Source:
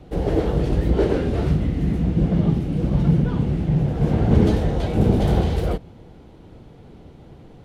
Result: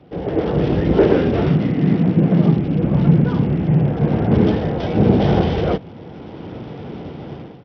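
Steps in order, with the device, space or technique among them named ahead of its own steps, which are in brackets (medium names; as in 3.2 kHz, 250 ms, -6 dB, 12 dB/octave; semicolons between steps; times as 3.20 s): 1.49–2.58 s: high-pass 110 Hz 24 dB/octave; Bluetooth headset (high-pass 120 Hz 12 dB/octave; level rider gain up to 16 dB; resampled via 8 kHz; trim -1 dB; SBC 64 kbps 44.1 kHz)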